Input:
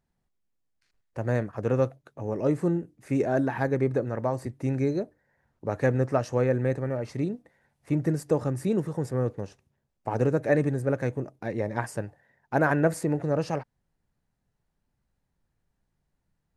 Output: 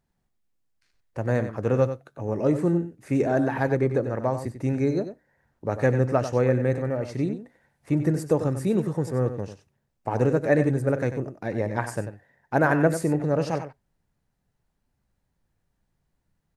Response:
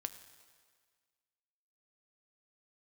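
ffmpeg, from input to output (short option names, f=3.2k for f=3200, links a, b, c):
-filter_complex "[0:a]aecho=1:1:94:0.299,asplit=2[a][b];[1:a]atrim=start_sample=2205,atrim=end_sample=3528[c];[b][c]afir=irnorm=-1:irlink=0,volume=-8.5dB[d];[a][d]amix=inputs=2:normalize=0"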